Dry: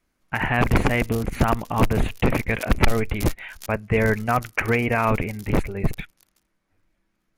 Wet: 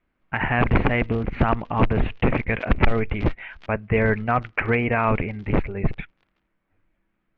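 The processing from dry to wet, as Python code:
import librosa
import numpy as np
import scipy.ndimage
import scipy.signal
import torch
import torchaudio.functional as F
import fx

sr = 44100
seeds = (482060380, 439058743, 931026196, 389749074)

y = scipy.signal.sosfilt(scipy.signal.butter(4, 3000.0, 'lowpass', fs=sr, output='sos'), x)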